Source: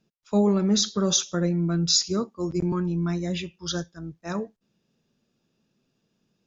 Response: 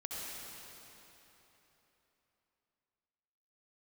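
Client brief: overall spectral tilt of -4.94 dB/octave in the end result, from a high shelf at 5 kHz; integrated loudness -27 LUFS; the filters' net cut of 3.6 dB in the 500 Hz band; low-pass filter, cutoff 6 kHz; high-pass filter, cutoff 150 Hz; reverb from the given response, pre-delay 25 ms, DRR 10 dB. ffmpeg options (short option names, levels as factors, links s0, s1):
-filter_complex "[0:a]highpass=150,lowpass=6000,equalizer=f=500:t=o:g=-5,highshelf=f=5000:g=-6,asplit=2[s0][s1];[1:a]atrim=start_sample=2205,adelay=25[s2];[s1][s2]afir=irnorm=-1:irlink=0,volume=0.266[s3];[s0][s3]amix=inputs=2:normalize=0,volume=1.06"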